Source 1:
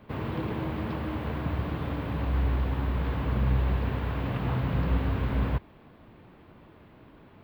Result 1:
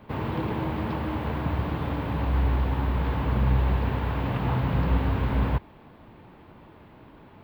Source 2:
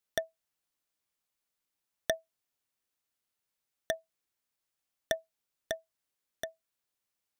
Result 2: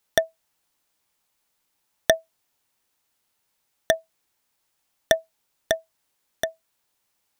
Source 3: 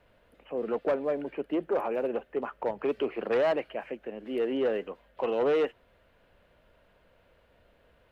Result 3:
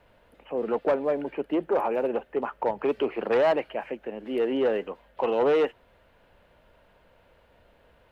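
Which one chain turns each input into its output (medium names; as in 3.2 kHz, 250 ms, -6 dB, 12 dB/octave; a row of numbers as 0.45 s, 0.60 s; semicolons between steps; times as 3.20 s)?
peaking EQ 880 Hz +5 dB 0.32 oct; normalise loudness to -27 LUFS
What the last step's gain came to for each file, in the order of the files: +2.5 dB, +12.0 dB, +3.0 dB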